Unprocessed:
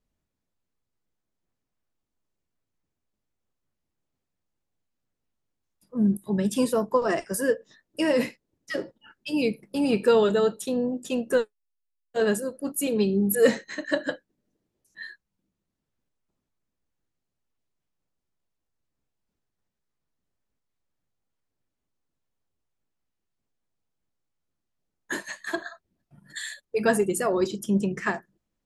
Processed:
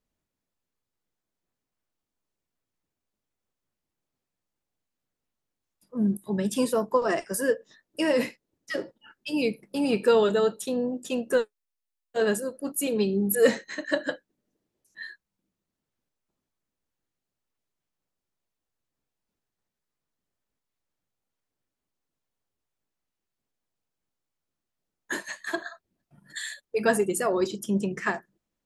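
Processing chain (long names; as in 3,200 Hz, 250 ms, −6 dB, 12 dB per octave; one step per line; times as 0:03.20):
low-shelf EQ 180 Hz −6 dB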